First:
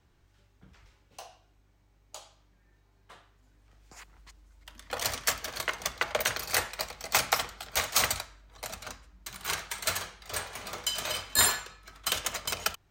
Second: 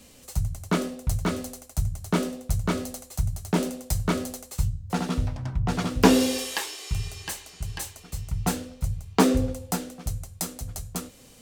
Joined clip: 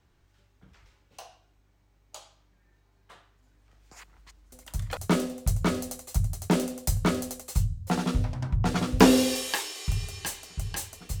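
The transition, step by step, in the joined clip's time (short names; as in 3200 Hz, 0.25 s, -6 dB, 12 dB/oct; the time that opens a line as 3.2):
first
4.52 add second from 1.55 s 0.45 s -6.5 dB
4.97 switch to second from 2 s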